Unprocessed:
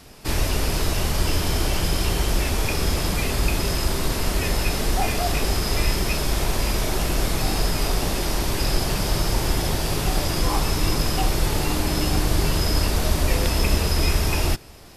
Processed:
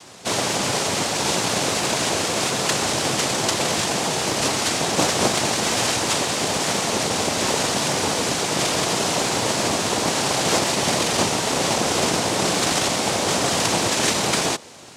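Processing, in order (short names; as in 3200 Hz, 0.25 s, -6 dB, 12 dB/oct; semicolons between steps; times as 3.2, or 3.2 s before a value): low shelf 260 Hz -6 dB; noise vocoder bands 2; gain +6 dB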